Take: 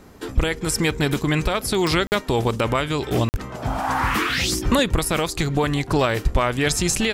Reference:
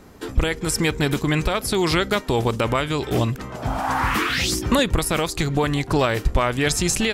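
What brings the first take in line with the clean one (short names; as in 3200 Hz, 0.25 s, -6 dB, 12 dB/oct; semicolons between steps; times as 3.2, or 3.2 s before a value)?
de-click; 3.3–3.42 HPF 140 Hz 24 dB/oct; 4.64–4.76 HPF 140 Hz 24 dB/oct; interpolate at 2.07/3.29, 49 ms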